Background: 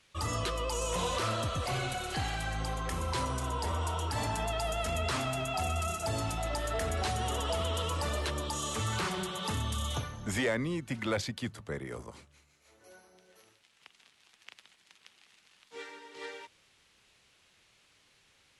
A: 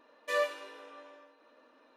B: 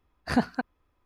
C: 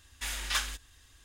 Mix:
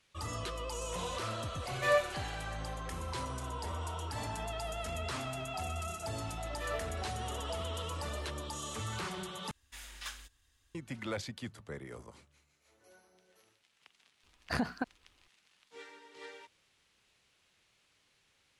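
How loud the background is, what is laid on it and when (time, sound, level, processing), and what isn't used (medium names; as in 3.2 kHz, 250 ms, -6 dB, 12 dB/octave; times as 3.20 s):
background -6 dB
1.54 s: add A -0.5 dB + comb 5.2 ms, depth 44%
6.32 s: add A -9 dB
9.51 s: replace with C -13 dB
14.23 s: add B -0.5 dB + compression, threshold -27 dBFS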